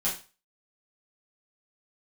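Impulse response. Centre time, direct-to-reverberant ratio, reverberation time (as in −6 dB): 27 ms, −8.0 dB, 0.30 s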